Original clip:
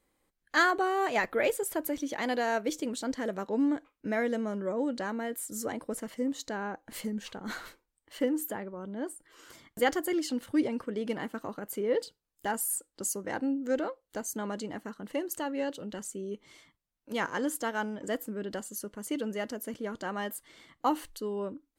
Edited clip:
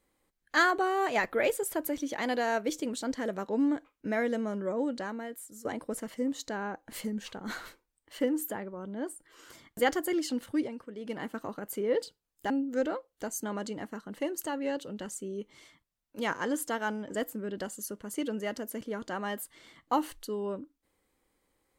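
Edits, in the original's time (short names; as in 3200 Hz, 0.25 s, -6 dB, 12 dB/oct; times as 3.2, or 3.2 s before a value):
4.81–5.65 fade out, to -14 dB
10.44–11.3 dip -8.5 dB, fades 0.32 s linear
12.5–13.43 cut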